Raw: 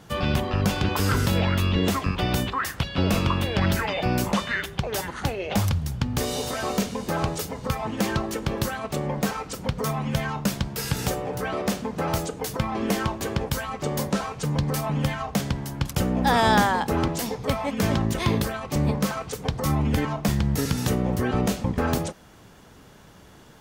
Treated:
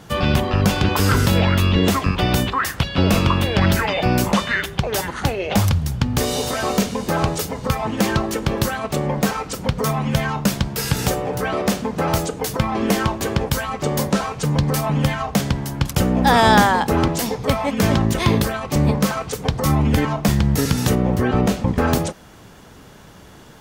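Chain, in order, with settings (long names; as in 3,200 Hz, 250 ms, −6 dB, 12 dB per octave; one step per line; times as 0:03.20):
0:20.95–0:21.68: high-shelf EQ 4,300 Hz −6.5 dB
level +6 dB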